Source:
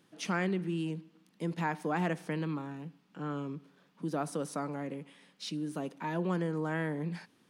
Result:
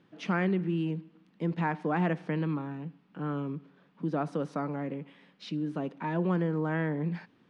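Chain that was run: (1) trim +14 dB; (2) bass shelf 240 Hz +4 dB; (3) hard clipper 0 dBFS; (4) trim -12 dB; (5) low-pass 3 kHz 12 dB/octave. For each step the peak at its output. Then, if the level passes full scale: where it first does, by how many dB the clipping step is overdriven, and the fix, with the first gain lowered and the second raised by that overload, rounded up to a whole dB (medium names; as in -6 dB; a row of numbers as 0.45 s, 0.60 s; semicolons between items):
-5.5 dBFS, -4.5 dBFS, -4.5 dBFS, -16.5 dBFS, -16.5 dBFS; nothing clips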